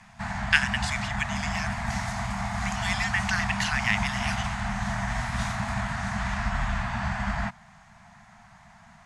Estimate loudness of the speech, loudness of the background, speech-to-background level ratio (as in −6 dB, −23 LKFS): −28.5 LKFS, −30.0 LKFS, 1.5 dB